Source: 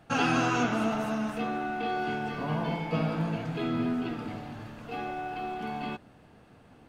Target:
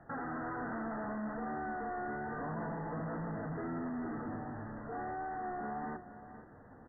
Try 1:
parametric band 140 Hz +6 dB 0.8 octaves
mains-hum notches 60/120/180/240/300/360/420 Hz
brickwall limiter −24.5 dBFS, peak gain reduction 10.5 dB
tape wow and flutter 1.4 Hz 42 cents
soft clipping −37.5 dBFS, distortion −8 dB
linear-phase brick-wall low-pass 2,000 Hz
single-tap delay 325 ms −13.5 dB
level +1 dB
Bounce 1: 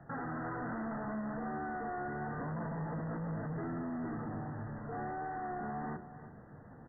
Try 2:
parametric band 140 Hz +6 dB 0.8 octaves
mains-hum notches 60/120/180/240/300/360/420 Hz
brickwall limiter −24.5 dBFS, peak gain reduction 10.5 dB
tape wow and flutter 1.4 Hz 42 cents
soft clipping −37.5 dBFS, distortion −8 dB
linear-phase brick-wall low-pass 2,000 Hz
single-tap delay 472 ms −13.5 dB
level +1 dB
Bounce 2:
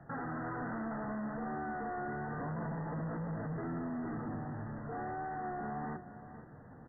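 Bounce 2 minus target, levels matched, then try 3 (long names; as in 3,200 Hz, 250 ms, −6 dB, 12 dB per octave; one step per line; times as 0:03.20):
125 Hz band +3.5 dB
parametric band 140 Hz −2.5 dB 0.8 octaves
mains-hum notches 60/120/180/240/300/360/420 Hz
brickwall limiter −24.5 dBFS, peak gain reduction 9.5 dB
tape wow and flutter 1.4 Hz 42 cents
soft clipping −37.5 dBFS, distortion −8 dB
linear-phase brick-wall low-pass 2,000 Hz
single-tap delay 472 ms −13.5 dB
level +1 dB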